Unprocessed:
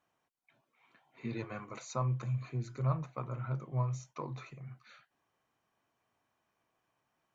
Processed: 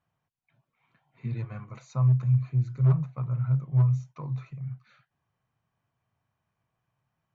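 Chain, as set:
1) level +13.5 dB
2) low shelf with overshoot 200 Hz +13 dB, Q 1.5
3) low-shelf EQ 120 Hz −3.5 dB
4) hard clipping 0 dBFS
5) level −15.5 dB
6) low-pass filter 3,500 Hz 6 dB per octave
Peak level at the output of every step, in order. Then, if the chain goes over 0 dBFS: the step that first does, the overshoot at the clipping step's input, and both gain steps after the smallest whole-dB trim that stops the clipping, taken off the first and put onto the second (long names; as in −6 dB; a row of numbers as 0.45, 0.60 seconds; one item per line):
−7.0, +5.5, +4.0, 0.0, −15.5, −15.5 dBFS
step 2, 4.0 dB
step 1 +9.5 dB, step 5 −11.5 dB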